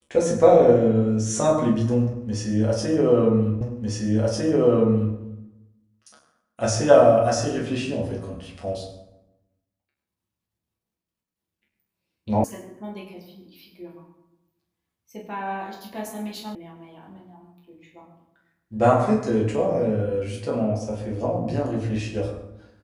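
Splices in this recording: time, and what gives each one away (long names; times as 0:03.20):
0:03.61: the same again, the last 1.55 s
0:12.44: cut off before it has died away
0:16.55: cut off before it has died away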